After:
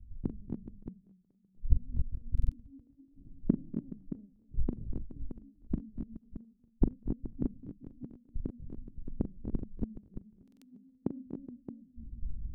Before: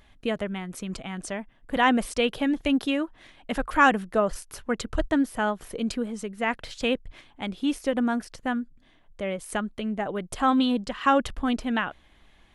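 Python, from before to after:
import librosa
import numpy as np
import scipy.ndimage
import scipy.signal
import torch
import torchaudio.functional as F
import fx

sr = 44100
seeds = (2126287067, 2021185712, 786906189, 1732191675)

y = scipy.signal.sosfilt(scipy.signal.cheby2(4, 70, 1000.0, 'lowpass', fs=sr, output='sos'), x)
y = fx.gate_flip(y, sr, shuts_db=-36.0, range_db=-37)
y = fx.echo_multitap(y, sr, ms=(41, 243, 269, 287, 422, 622), db=(-10.0, -8.5, -5.5, -8.0, -8.5, -5.0))
y = fx.rider(y, sr, range_db=4, speed_s=2.0)
y = fx.buffer_glitch(y, sr, at_s=(2.33, 10.43), block=2048, repeats=3)
y = fx.band_widen(y, sr, depth_pct=100)
y = F.gain(torch.from_numpy(y), 15.5).numpy()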